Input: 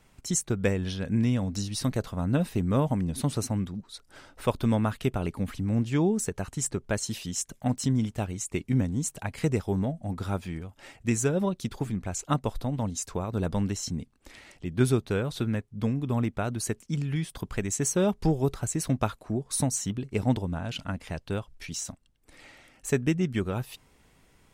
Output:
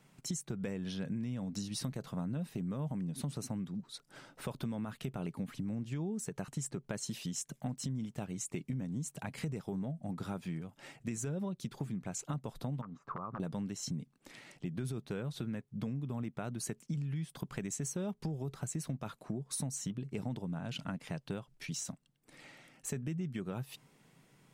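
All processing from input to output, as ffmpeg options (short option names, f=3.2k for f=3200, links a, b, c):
-filter_complex "[0:a]asettb=1/sr,asplit=3[a][b][c];[a]atrim=end=12.814[d];[b]atrim=start=12.81:end=13.4,asetpts=PTS-STARTPTS,afade=t=in:d=0.004:c=qsin,afade=t=out:st=0.586:d=0.004:c=qsin,aeval=exprs='(mod(10.6*val(0)+1,2)-1)/10.6':c=same,acompressor=threshold=-37dB:ratio=16:attack=3.2:release=140:knee=1:detection=peak,lowpass=f=1.2k:t=q:w=7.6[e];[c]atrim=start=13.396[f];[d][e]acrossfade=d=0.004:c1=hsin:c2=qsin[g];[g][f]acrossfade=d=0.004:c1=qsin:c2=hsin,lowshelf=f=100:t=q:w=3:g=-12,alimiter=limit=-17dB:level=0:latency=1:release=18,acompressor=threshold=-31dB:ratio=6,volume=-4dB"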